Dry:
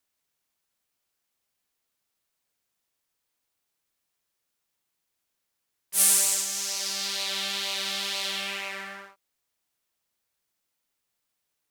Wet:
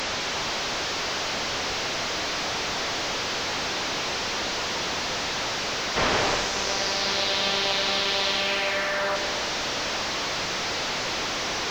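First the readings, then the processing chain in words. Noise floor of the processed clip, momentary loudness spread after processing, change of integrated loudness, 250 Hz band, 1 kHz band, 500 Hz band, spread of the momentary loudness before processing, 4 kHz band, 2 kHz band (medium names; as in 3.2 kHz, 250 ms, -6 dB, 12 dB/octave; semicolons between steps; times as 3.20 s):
-29 dBFS, 4 LU, -0.5 dB, +16.0 dB, +16.0 dB, +17.5 dB, 15 LU, +8.0 dB, +12.0 dB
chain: one-bit delta coder 32 kbps, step -27 dBFS; peaking EQ 570 Hz +5.5 dB 2.3 oct; bit-crushed delay 104 ms, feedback 80%, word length 8-bit, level -14 dB; trim +4 dB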